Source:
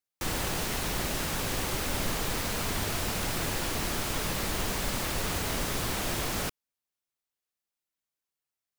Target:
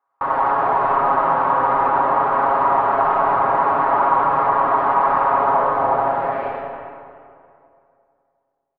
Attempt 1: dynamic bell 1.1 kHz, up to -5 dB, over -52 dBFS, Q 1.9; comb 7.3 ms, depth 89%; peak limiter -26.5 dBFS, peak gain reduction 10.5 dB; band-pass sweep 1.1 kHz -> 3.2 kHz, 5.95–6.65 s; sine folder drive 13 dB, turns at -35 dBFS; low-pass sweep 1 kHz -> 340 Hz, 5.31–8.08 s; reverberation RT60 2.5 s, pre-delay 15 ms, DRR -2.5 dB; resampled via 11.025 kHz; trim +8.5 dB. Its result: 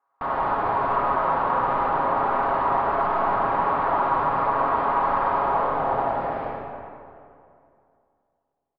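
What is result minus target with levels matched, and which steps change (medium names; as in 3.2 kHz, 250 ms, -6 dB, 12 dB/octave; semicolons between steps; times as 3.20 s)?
sine folder: distortion +14 dB
change: sine folder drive 13 dB, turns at -28 dBFS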